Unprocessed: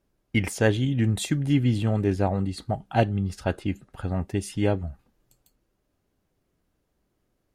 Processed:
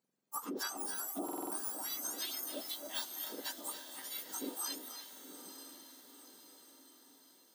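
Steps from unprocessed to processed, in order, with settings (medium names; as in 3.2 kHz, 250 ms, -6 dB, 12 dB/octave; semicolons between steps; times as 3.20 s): spectrum inverted on a logarithmic axis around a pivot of 1.6 kHz; high-pass 240 Hz 12 dB/octave; compression, threshold -30 dBFS, peak gain reduction 8 dB; echo that smears into a reverb 928 ms, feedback 51%, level -10.5 dB; reverberation RT60 0.45 s, pre-delay 231 ms, DRR 6.5 dB; buffer glitch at 1.24 s, samples 2048, times 5; trim -6.5 dB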